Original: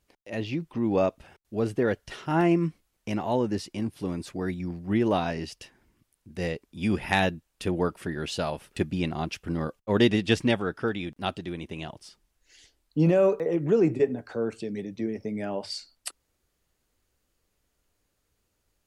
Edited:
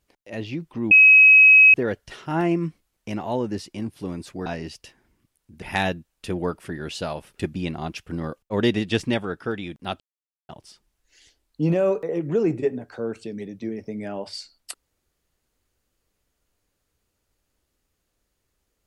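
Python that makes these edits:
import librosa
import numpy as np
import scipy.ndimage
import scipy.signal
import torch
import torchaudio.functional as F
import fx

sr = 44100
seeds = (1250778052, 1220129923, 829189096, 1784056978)

y = fx.edit(x, sr, fx.bleep(start_s=0.91, length_s=0.83, hz=2550.0, db=-8.0),
    fx.cut(start_s=4.46, length_s=0.77),
    fx.cut(start_s=6.39, length_s=0.6),
    fx.silence(start_s=11.37, length_s=0.49), tone=tone)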